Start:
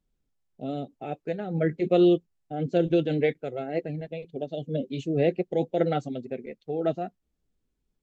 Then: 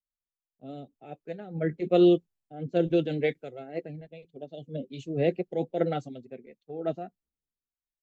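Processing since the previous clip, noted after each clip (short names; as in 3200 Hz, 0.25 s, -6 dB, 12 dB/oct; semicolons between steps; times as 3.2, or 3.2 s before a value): three-band expander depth 70%; gain -4 dB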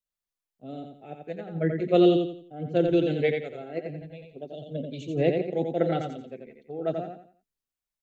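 feedback echo 87 ms, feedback 33%, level -5 dB; gain +1.5 dB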